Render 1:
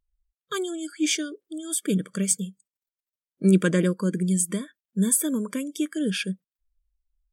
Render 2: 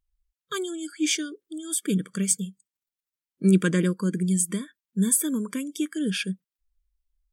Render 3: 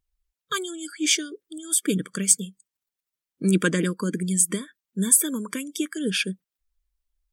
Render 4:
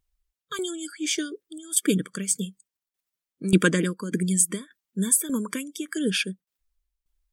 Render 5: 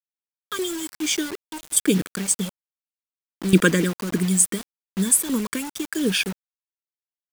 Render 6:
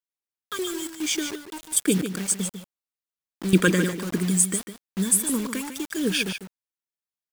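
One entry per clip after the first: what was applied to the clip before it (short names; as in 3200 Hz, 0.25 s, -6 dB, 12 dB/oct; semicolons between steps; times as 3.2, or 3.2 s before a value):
bell 630 Hz -9 dB 0.71 oct
harmonic-percussive split percussive +8 dB; gain -2.5 dB
tremolo saw down 1.7 Hz, depth 75%; gain +3.5 dB
bit-crush 6-bit; gain +3 dB
echo 0.148 s -9 dB; gain -2.5 dB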